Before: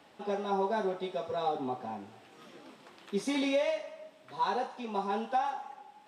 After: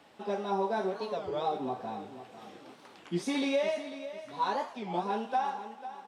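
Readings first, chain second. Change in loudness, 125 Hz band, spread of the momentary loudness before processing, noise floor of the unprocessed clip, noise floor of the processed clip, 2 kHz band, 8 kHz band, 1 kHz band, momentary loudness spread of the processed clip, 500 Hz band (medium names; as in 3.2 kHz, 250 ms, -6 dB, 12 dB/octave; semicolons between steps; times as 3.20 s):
0.0 dB, +2.5 dB, 17 LU, -59 dBFS, -55 dBFS, 0.0 dB, 0.0 dB, 0.0 dB, 18 LU, 0.0 dB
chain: on a send: feedback delay 498 ms, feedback 34%, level -13 dB; on the sum: warped record 33 1/3 rpm, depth 250 cents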